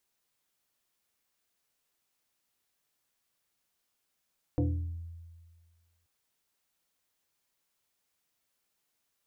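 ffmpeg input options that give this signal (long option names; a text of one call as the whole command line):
ffmpeg -f lavfi -i "aevalsrc='0.0708*pow(10,-3*t/1.7)*sin(2*PI*84*t+1.9*pow(10,-3*t/0.75)*sin(2*PI*2.47*84*t))':duration=1.48:sample_rate=44100" out.wav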